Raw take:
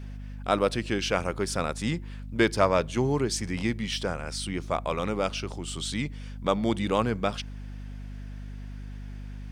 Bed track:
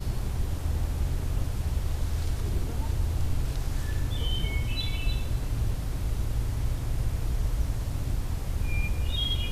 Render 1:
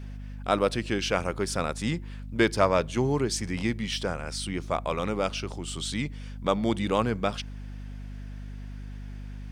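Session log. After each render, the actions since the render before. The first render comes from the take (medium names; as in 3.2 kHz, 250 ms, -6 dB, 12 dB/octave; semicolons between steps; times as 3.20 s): no audible change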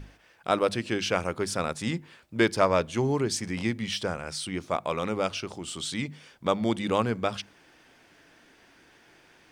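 hum notches 50/100/150/200/250 Hz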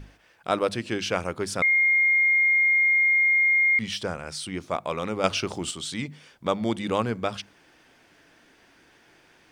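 1.62–3.79 s: bleep 2.13 kHz -17 dBFS; 5.24–5.71 s: gain +6.5 dB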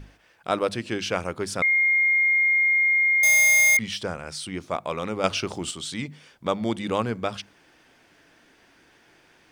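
3.23–3.77 s: square wave that keeps the level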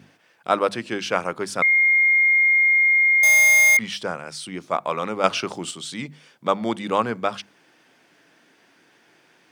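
high-pass 130 Hz 24 dB/octave; dynamic bell 1.1 kHz, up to +7 dB, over -36 dBFS, Q 0.72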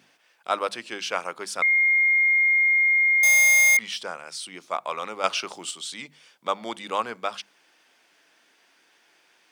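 high-pass 1.1 kHz 6 dB/octave; peaking EQ 1.7 kHz -3 dB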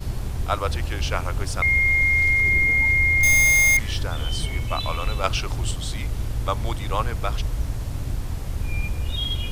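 add bed track +2 dB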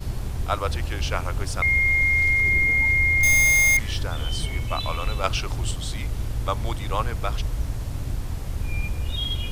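trim -1 dB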